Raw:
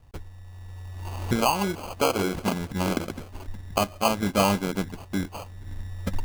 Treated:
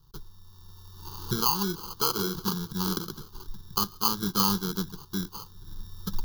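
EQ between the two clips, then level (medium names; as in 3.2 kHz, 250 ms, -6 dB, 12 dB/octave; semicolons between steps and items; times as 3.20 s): treble shelf 3.2 kHz +11.5 dB; static phaser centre 390 Hz, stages 8; static phaser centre 2.5 kHz, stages 6; 0.0 dB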